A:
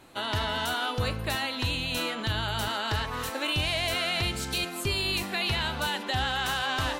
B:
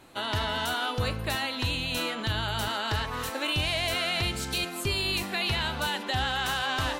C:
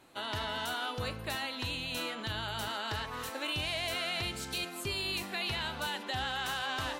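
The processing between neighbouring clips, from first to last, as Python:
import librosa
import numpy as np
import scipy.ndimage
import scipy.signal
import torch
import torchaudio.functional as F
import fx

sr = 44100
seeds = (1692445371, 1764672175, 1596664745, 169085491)

y1 = x
y2 = fx.low_shelf(y1, sr, hz=110.0, db=-7.0)
y2 = y2 * librosa.db_to_amplitude(-6.0)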